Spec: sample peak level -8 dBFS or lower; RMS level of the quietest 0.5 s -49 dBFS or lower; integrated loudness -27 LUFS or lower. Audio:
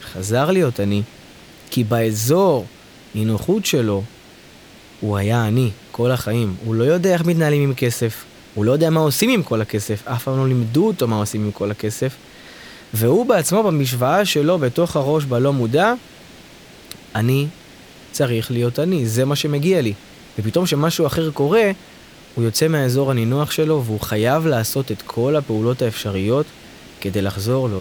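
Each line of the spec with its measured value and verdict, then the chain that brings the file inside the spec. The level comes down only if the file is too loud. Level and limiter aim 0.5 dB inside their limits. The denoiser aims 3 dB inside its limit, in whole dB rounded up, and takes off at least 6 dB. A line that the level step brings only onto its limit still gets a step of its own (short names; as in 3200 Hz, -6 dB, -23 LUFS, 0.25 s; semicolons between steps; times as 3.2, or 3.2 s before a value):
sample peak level -3.0 dBFS: fail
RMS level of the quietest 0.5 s -44 dBFS: fail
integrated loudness -19.0 LUFS: fail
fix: gain -8.5 dB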